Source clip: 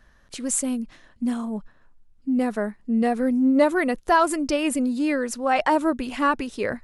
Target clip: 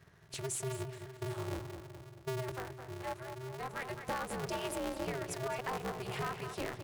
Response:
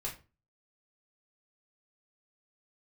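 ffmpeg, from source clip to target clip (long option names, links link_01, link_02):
-filter_complex "[0:a]bandreject=frequency=60:width_type=h:width=6,bandreject=frequency=120:width_type=h:width=6,bandreject=frequency=180:width_type=h:width=6,bandreject=frequency=240:width_type=h:width=6,bandreject=frequency=300:width_type=h:width=6,bandreject=frequency=360:width_type=h:width=6,bandreject=frequency=420:width_type=h:width=6,acompressor=threshold=-30dB:ratio=6,asettb=1/sr,asplit=3[link_01][link_02][link_03];[link_01]atrim=end=2.524[link_04];[link_02]atrim=start=2.52:end=3.9,asetpts=PTS-STARTPTS,afade=type=in:duration=0.004:curve=qsin,afade=type=out:start_time=1.376:duration=0.004:curve=qsin,lowshelf=frequency=630:width_type=q:width=3:gain=-7.5[link_05];[link_03]atrim=start=3.896[link_06];[link_04][link_05]acrossfade=duration=0.004:curve1=hsin:curve2=qsin[link_07];[link_07][link_06]acrossfade=duration=0.004:curve1=qsin:curve2=hsin,asplit=3[link_08][link_09][link_10];[link_08]afade=type=out:start_time=4.49:duration=0.02[link_11];[link_09]afreqshift=180,afade=type=in:start_time=4.49:duration=0.02,afade=type=out:start_time=5.06:duration=0.02[link_12];[link_10]afade=type=in:start_time=5.06:duration=0.02[link_13];[link_11][link_12][link_13]amix=inputs=3:normalize=0,asplit=2[link_14][link_15];[link_15]adelay=213,lowpass=frequency=4300:poles=1,volume=-8dB,asplit=2[link_16][link_17];[link_17]adelay=213,lowpass=frequency=4300:poles=1,volume=0.53,asplit=2[link_18][link_19];[link_19]adelay=213,lowpass=frequency=4300:poles=1,volume=0.53,asplit=2[link_20][link_21];[link_21]adelay=213,lowpass=frequency=4300:poles=1,volume=0.53,asplit=2[link_22][link_23];[link_23]adelay=213,lowpass=frequency=4300:poles=1,volume=0.53,asplit=2[link_24][link_25];[link_25]adelay=213,lowpass=frequency=4300:poles=1,volume=0.53[link_26];[link_16][link_18][link_20][link_22][link_24][link_26]amix=inputs=6:normalize=0[link_27];[link_14][link_27]amix=inputs=2:normalize=0,aeval=exprs='val(0)*sgn(sin(2*PI*130*n/s))':channel_layout=same,volume=-6dB"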